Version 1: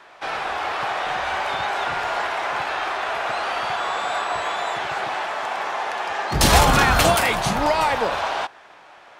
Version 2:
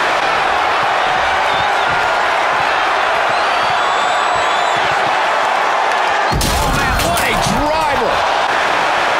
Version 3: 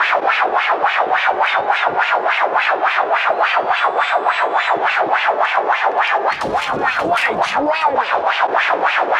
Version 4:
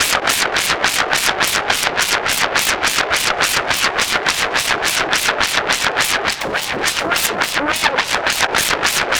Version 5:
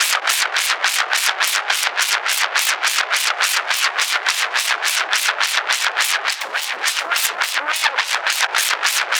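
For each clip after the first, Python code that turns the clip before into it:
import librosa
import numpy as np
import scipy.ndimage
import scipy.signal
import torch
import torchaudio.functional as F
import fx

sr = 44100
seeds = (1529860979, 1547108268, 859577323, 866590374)

y1 = fx.env_flatten(x, sr, amount_pct=100)
y1 = F.gain(torch.from_numpy(y1), -3.5).numpy()
y2 = fx.wah_lfo(y1, sr, hz=3.5, low_hz=370.0, high_hz=2600.0, q=2.5)
y2 = F.gain(torch.from_numpy(y2), 5.5).numpy()
y3 = fx.self_delay(y2, sr, depth_ms=0.97)
y4 = scipy.signal.sosfilt(scipy.signal.butter(2, 920.0, 'highpass', fs=sr, output='sos'), y3)
y4 = F.gain(torch.from_numpy(y4), -1.0).numpy()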